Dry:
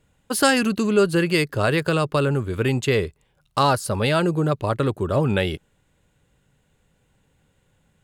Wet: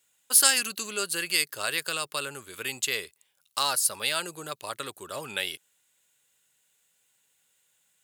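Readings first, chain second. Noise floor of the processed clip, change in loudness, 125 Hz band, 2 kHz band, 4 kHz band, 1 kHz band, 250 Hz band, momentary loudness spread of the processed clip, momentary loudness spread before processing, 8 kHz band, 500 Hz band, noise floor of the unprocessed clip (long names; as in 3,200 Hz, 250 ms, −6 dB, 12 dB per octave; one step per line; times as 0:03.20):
−71 dBFS, −5.0 dB, −27.5 dB, −4.5 dB, +1.0 dB, −10.0 dB, −22.0 dB, 16 LU, 5 LU, +8.0 dB, −16.5 dB, −66 dBFS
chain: first difference
level +6.5 dB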